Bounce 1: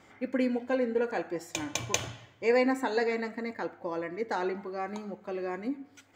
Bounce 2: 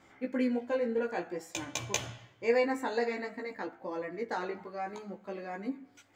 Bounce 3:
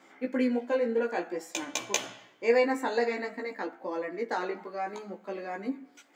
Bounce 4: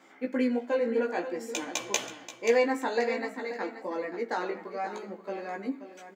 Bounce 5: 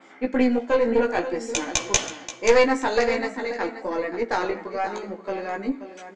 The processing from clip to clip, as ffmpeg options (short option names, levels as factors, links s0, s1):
-af "flanger=delay=15:depth=2.6:speed=0.55"
-af "highpass=f=210:w=0.5412,highpass=f=210:w=1.3066,volume=1.5"
-af "aecho=1:1:531|1062|1593:0.266|0.0585|0.0129"
-af "adynamicequalizer=threshold=0.00282:dfrequency=6100:dqfactor=1.8:tfrequency=6100:tqfactor=1.8:attack=5:release=100:ratio=0.375:range=2.5:mode=boostabove:tftype=bell,aeval=exprs='0.447*(cos(1*acos(clip(val(0)/0.447,-1,1)))-cos(1*PI/2))+0.0794*(cos(5*acos(clip(val(0)/0.447,-1,1)))-cos(5*PI/2))+0.0631*(cos(6*acos(clip(val(0)/0.447,-1,1)))-cos(6*PI/2))+0.0282*(cos(7*acos(clip(val(0)/0.447,-1,1)))-cos(7*PI/2))':c=same,lowpass=f=7800:w=0.5412,lowpass=f=7800:w=1.3066,volume=1.5"